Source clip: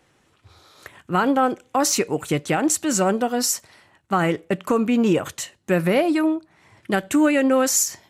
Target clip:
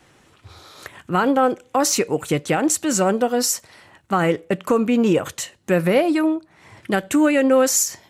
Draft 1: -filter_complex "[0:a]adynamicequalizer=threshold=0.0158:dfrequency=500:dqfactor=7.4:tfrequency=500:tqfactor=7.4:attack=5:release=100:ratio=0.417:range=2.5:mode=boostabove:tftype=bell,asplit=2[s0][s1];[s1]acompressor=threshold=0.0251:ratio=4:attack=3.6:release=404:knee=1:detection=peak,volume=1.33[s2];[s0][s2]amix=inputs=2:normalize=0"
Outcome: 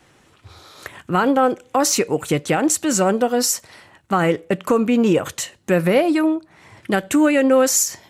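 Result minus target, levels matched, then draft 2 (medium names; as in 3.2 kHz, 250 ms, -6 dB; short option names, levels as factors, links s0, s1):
compression: peak gain reduction -8 dB
-filter_complex "[0:a]adynamicequalizer=threshold=0.0158:dfrequency=500:dqfactor=7.4:tfrequency=500:tqfactor=7.4:attack=5:release=100:ratio=0.417:range=2.5:mode=boostabove:tftype=bell,asplit=2[s0][s1];[s1]acompressor=threshold=0.0075:ratio=4:attack=3.6:release=404:knee=1:detection=peak,volume=1.33[s2];[s0][s2]amix=inputs=2:normalize=0"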